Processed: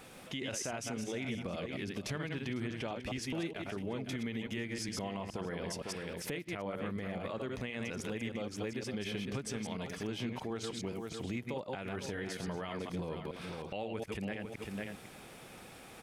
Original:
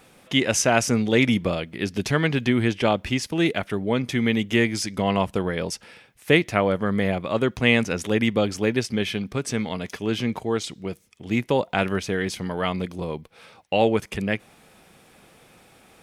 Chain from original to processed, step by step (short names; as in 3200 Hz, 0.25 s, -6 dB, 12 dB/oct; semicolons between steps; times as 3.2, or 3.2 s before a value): reverse delay 0.104 s, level -5.5 dB; on a send: echo 0.501 s -15 dB; on the sum: compressor 6:1, threshold -35 dBFS, peak gain reduction 21.5 dB; limiter -28.5 dBFS, peak gain reduction 9 dB